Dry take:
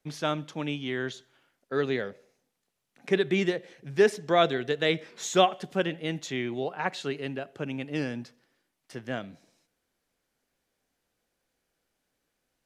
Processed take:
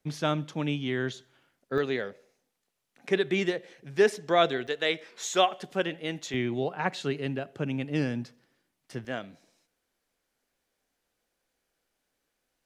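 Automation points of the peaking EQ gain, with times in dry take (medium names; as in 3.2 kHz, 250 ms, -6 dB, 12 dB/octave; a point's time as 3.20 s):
peaking EQ 120 Hz 2.3 oct
+5 dB
from 1.78 s -4 dB
from 4.67 s -14.5 dB
from 5.51 s -5.5 dB
from 6.34 s +5.5 dB
from 9.05 s -5 dB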